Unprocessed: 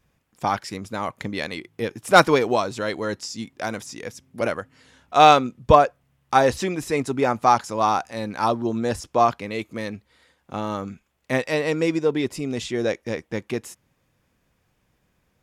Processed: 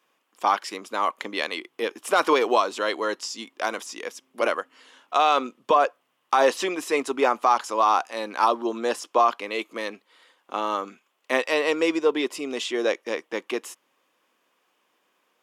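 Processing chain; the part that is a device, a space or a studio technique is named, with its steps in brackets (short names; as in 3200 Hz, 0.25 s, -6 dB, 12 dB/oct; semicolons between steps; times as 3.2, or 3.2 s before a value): laptop speaker (HPF 300 Hz 24 dB/oct; bell 1100 Hz +7.5 dB 0.5 oct; bell 3000 Hz +7 dB 0.44 oct; limiter -8.5 dBFS, peak gain reduction 12.5 dB)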